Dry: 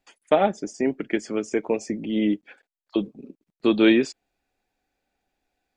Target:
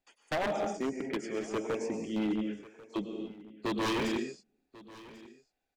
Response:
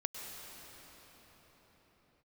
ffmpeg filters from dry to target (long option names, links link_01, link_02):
-filter_complex "[1:a]atrim=start_sample=2205,afade=type=out:start_time=0.36:duration=0.01,atrim=end_sample=16317[link_01];[0:a][link_01]afir=irnorm=-1:irlink=0,aeval=exprs='0.119*(abs(mod(val(0)/0.119+3,4)-2)-1)':channel_layout=same,aecho=1:1:1092:0.106,volume=-7dB"